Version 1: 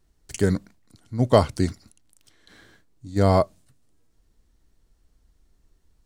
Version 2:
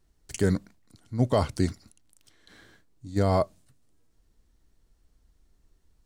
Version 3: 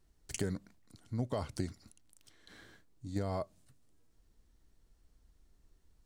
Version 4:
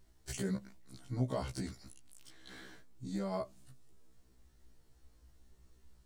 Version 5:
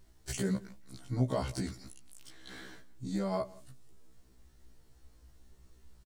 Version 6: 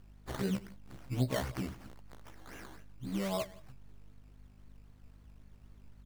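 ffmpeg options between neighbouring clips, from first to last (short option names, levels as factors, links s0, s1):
-af "alimiter=limit=0.335:level=0:latency=1:release=15,volume=0.794"
-af "acompressor=threshold=0.0316:ratio=5,volume=0.75"
-af "alimiter=level_in=2:limit=0.0631:level=0:latency=1:release=41,volume=0.501,afftfilt=real='re*1.73*eq(mod(b,3),0)':imag='im*1.73*eq(mod(b,3),0)':win_size=2048:overlap=0.75,volume=2.24"
-af "aecho=1:1:170:0.075,volume=1.58"
-af "aeval=exprs='val(0)+0.00178*(sin(2*PI*50*n/s)+sin(2*PI*2*50*n/s)/2+sin(2*PI*3*50*n/s)/3+sin(2*PI*4*50*n/s)/4+sin(2*PI*5*50*n/s)/5)':c=same,acrusher=samples=14:mix=1:aa=0.000001:lfo=1:lforange=8.4:lforate=3.8,volume=0.841"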